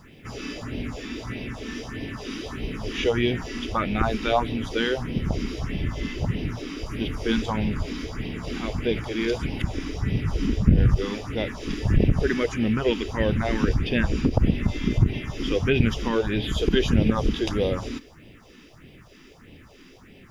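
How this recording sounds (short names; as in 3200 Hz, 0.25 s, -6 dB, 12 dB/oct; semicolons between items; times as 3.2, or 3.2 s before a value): phasing stages 4, 1.6 Hz, lowest notch 100–1300 Hz; a quantiser's noise floor 12-bit, dither none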